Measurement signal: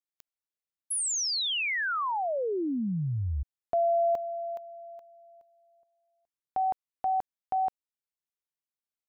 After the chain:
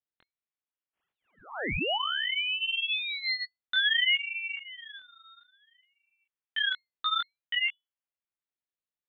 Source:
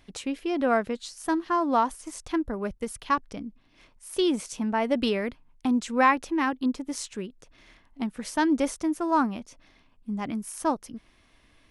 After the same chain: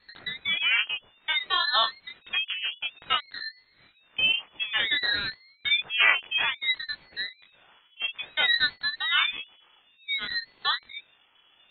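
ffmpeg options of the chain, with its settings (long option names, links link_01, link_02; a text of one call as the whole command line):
ffmpeg -i in.wav -af "flanger=delay=16:depth=8:speed=1.7,lowpass=frequency=2700:width_type=q:width=0.5098,lowpass=frequency=2700:width_type=q:width=0.6013,lowpass=frequency=2700:width_type=q:width=0.9,lowpass=frequency=2700:width_type=q:width=2.563,afreqshift=-3200,aeval=exprs='val(0)*sin(2*PI*680*n/s+680*0.75/0.57*sin(2*PI*0.57*n/s))':channel_layout=same,volume=5dB" out.wav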